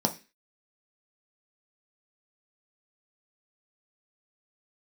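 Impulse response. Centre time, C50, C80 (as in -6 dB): 8 ms, 15.5 dB, 22.0 dB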